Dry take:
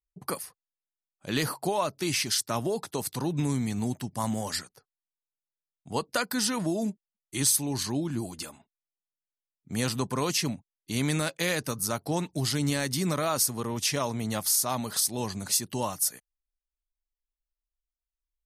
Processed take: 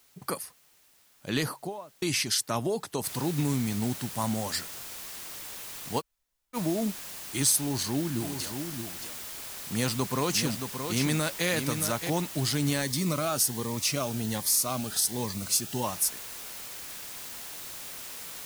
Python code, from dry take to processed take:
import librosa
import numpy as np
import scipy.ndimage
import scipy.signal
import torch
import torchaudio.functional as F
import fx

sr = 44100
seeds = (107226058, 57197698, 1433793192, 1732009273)

y = fx.studio_fade_out(x, sr, start_s=1.31, length_s=0.71)
y = fx.noise_floor_step(y, sr, seeds[0], at_s=3.04, before_db=-62, after_db=-41, tilt_db=0.0)
y = fx.echo_single(y, sr, ms=624, db=-7.0, at=(7.58, 12.1))
y = fx.notch_cascade(y, sr, direction='rising', hz=1.3, at=(12.81, 15.83), fade=0.02)
y = fx.edit(y, sr, fx.room_tone_fill(start_s=6.0, length_s=0.55, crossfade_s=0.04), tone=tone)